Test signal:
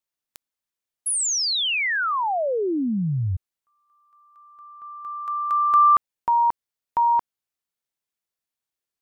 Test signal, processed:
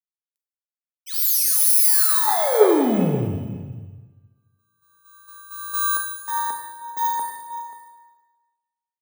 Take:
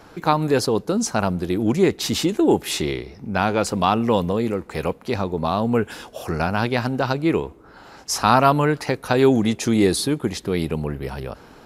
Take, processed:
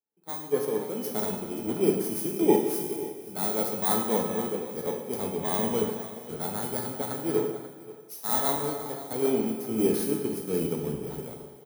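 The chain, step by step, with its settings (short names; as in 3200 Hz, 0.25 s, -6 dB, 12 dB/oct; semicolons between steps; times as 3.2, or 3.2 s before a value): FFT order left unsorted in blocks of 16 samples; HPF 180 Hz 12 dB/oct; bell 3100 Hz -9.5 dB 2.5 oct; AGC gain up to 14 dB; resonator 430 Hz, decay 0.31 s, harmonics all, mix 80%; echo 0.535 s -10 dB; Schroeder reverb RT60 2.5 s, combs from 32 ms, DRR 1 dB; three-band expander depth 100%; gain -2 dB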